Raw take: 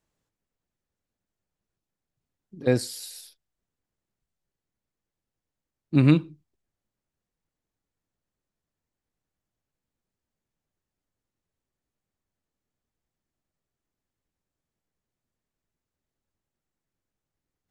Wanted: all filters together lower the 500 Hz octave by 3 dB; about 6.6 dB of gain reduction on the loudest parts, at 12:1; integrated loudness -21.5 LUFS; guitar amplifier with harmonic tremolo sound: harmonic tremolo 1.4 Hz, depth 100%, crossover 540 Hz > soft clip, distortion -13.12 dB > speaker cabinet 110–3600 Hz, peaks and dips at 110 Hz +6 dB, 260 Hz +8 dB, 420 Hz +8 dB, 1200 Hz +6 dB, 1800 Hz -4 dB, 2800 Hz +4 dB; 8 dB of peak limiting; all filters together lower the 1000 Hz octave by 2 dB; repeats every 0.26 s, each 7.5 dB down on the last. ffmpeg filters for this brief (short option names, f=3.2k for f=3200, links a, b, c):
-filter_complex "[0:a]equalizer=f=500:t=o:g=-8.5,equalizer=f=1k:t=o:g=-4.5,acompressor=threshold=-21dB:ratio=12,alimiter=limit=-21.5dB:level=0:latency=1,aecho=1:1:260|520|780|1040|1300:0.422|0.177|0.0744|0.0312|0.0131,acrossover=split=540[a][b];[a]aeval=exprs='val(0)*(1-1/2+1/2*cos(2*PI*1.4*n/s))':c=same[c];[b]aeval=exprs='val(0)*(1-1/2-1/2*cos(2*PI*1.4*n/s))':c=same[d];[c][d]amix=inputs=2:normalize=0,asoftclip=threshold=-32.5dB,highpass=110,equalizer=f=110:t=q:w=4:g=6,equalizer=f=260:t=q:w=4:g=8,equalizer=f=420:t=q:w=4:g=8,equalizer=f=1.2k:t=q:w=4:g=6,equalizer=f=1.8k:t=q:w=4:g=-4,equalizer=f=2.8k:t=q:w=4:g=4,lowpass=f=3.6k:w=0.5412,lowpass=f=3.6k:w=1.3066,volume=20dB"